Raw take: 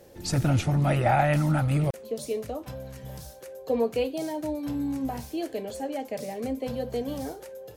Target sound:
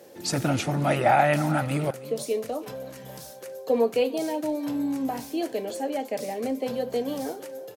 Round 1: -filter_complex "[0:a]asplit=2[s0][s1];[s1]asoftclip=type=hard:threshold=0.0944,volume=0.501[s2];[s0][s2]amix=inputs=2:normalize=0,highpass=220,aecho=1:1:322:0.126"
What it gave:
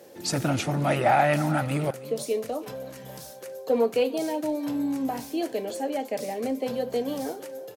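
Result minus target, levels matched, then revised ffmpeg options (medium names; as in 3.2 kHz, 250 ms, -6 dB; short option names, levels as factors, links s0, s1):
hard clipper: distortion +21 dB
-filter_complex "[0:a]asplit=2[s0][s1];[s1]asoftclip=type=hard:threshold=0.224,volume=0.501[s2];[s0][s2]amix=inputs=2:normalize=0,highpass=220,aecho=1:1:322:0.126"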